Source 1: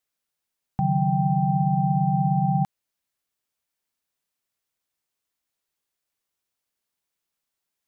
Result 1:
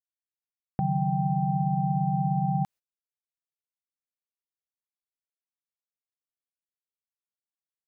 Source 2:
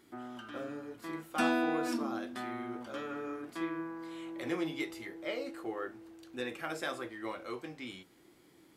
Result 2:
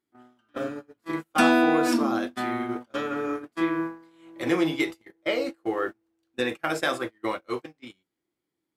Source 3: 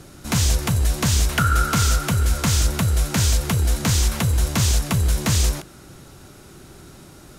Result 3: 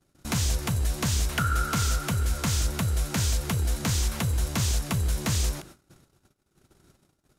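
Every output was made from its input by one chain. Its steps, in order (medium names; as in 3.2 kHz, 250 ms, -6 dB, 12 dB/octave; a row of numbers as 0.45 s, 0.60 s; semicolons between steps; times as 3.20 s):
gate -40 dBFS, range -33 dB; in parallel at +1 dB: compression, threshold -26 dBFS; on the sum: normalise loudness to -27 LUFS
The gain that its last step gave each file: -7.5 dB, +4.5 dB, -9.5 dB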